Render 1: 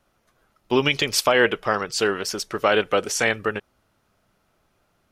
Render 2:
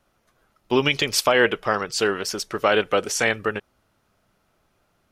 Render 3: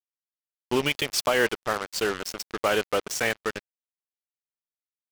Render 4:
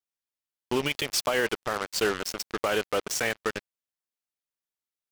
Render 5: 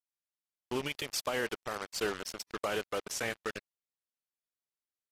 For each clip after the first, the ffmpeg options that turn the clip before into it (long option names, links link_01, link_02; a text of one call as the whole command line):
ffmpeg -i in.wav -af anull out.wav
ffmpeg -i in.wav -af "acrusher=bits=3:mix=0:aa=0.5,volume=-5dB" out.wav
ffmpeg -i in.wav -af "alimiter=limit=-16dB:level=0:latency=1:release=90,volume=1dB" out.wav
ffmpeg -i in.wav -af "volume=-8dB" -ar 32000 -c:a aac -b:a 48k out.aac